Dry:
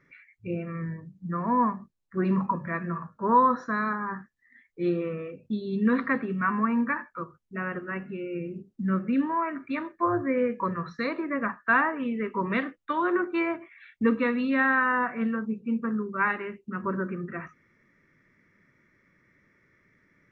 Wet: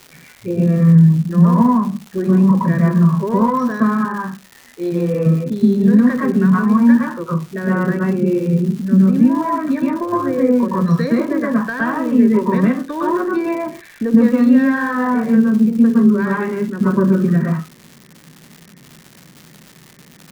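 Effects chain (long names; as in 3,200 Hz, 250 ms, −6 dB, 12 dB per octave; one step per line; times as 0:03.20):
one-sided soft clipper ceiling −12 dBFS
0:03.92–0:05.14: low-shelf EQ 460 Hz −10.5 dB
downward compressor, threshold −30 dBFS, peak gain reduction 12.5 dB
convolution reverb RT60 0.20 s, pre-delay 112 ms, DRR −3.5 dB
surface crackle 330 per second −29 dBFS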